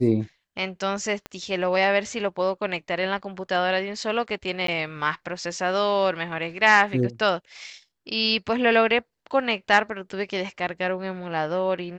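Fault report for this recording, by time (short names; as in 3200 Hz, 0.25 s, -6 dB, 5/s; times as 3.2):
1.26 pop -19 dBFS
4.67–4.68 gap 13 ms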